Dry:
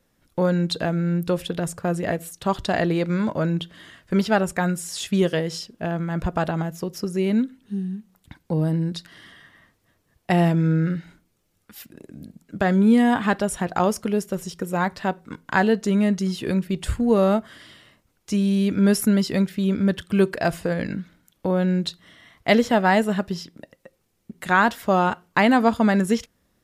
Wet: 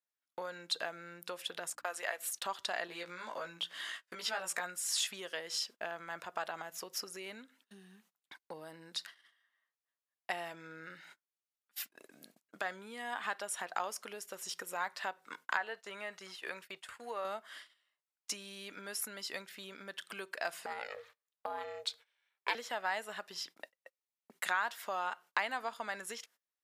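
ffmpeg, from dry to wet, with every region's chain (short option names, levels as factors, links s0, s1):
-filter_complex "[0:a]asettb=1/sr,asplit=3[s0][s1][s2];[s0]atrim=end=1.704[s3];[s1]atrim=start=1.7:end=2.28,asetpts=PTS-STARTPTS,afade=t=in:d=0.004:c=qsin,afade=t=out:st=0.576:d=0.004:c=qsin,highpass=600,agate=range=0.0501:threshold=0.00631:ratio=16:release=100:detection=peak,aeval=exprs='val(0)+0.00501*(sin(2*PI*60*n/s)+sin(2*PI*2*60*n/s)/2+sin(2*PI*3*60*n/s)/3+sin(2*PI*4*60*n/s)/4+sin(2*PI*5*60*n/s)/5)':c=same[s4];[s2]atrim=start=2.276[s5];[s3][s4]acrossfade=d=0.004:c1=hsin:c2=qsin[s6];[s6][s5]acrossfade=d=0.004:c1=qsin:c2=hsin,asettb=1/sr,asplit=3[s7][s8][s9];[s7]atrim=end=2.874[s10];[s8]atrim=start=2.87:end=4.64,asetpts=PTS-STARTPTS,afade=t=in:d=0.004:c=qsin,afade=t=out:st=1.766:d=0.004:c=qsin,equalizer=f=5800:t=o:w=2.5:g=2.5,acompressor=threshold=0.0631:ratio=3:attack=3.2:release=140:knee=1:detection=peak,asplit=2[s11][s12];[s12]adelay=17,volume=0.794[s13];[s11][s13]amix=inputs=2:normalize=0,atrim=end_sample=78057[s14];[s9]atrim=start=4.636[s15];[s10][s14]acrossfade=d=0.004:c1=hsin:c2=qsin[s16];[s16][s15]acrossfade=d=0.004:c1=qsin:c2=hsin,asettb=1/sr,asplit=3[s17][s18][s19];[s17]atrim=end=15.574[s20];[s18]atrim=start=15.57:end=17.25,asetpts=PTS-STARTPTS,afade=t=in:d=0.004:c=qsin,afade=t=out:st=1.676:d=0.004:c=qsin,agate=range=0.0224:threshold=0.0398:ratio=3:release=100:detection=peak,equalizer=f=230:t=o:w=1.8:g=-10.5,acrossover=split=2600[s21][s22];[s22]acompressor=threshold=0.00282:ratio=4:attack=1:release=60[s23];[s21][s23]amix=inputs=2:normalize=0[s24];[s19]atrim=start=17.246[s25];[s20][s24]acrossfade=d=0.004:c1=hsin:c2=qsin[s26];[s26][s25]acrossfade=d=0.004:c1=qsin:c2=hsin,asettb=1/sr,asplit=3[s27][s28][s29];[s27]atrim=end=20.664[s30];[s28]atrim=start=20.66:end=22.55,asetpts=PTS-STARTPTS,afade=t=in:d=0.004:c=qsin,afade=t=out:st=1.886:d=0.004:c=qsin,highpass=98,aeval=exprs='val(0)*sin(2*PI*290*n/s)':c=same,bandreject=f=50:t=h:w=6,bandreject=f=100:t=h:w=6,bandreject=f=150:t=h:w=6,bandreject=f=200:t=h:w=6,bandreject=f=250:t=h:w=6,bandreject=f=300:t=h:w=6,bandreject=f=350:t=h:w=6[s31];[s29]atrim=start=22.546[s32];[s30][s31]acrossfade=d=0.004:c1=hsin:c2=qsin[s33];[s33][s32]acrossfade=d=0.004:c1=qsin:c2=hsin,agate=range=0.0447:threshold=0.00708:ratio=16:detection=peak,acompressor=threshold=0.0282:ratio=4,highpass=910,volume=1.12"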